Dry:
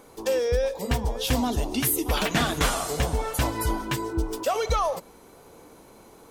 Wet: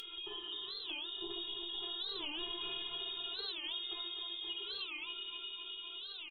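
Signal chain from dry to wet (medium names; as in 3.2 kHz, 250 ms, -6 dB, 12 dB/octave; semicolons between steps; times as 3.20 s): simulated room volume 2400 m³, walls mixed, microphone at 3.7 m; frequency inversion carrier 3.6 kHz; static phaser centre 390 Hz, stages 8; inharmonic resonator 340 Hz, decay 0.21 s, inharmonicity 0.002; feedback delay 256 ms, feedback 55%, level -6.5 dB; upward compressor, threshold -47 dBFS; small resonant body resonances 400/1900 Hz, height 13 dB, ringing for 45 ms; compression 4:1, threshold -52 dBFS, peak gain reduction 18 dB; 1.68–3.94 s: doubling 48 ms -7 dB; warped record 45 rpm, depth 250 cents; trim +9 dB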